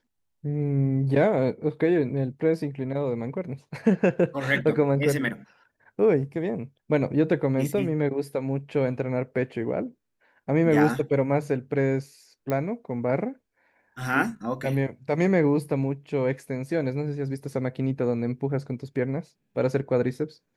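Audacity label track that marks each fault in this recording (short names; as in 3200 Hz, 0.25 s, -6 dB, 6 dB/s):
12.500000	12.500000	pop -15 dBFS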